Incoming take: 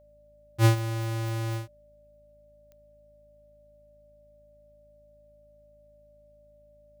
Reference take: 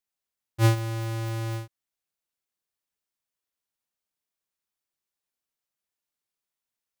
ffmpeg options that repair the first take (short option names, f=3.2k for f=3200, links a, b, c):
-af "adeclick=t=4,bandreject=f=53.2:t=h:w=4,bandreject=f=106.4:t=h:w=4,bandreject=f=159.6:t=h:w=4,bandreject=f=212.8:t=h:w=4,bandreject=f=266:t=h:w=4,bandreject=f=590:w=30"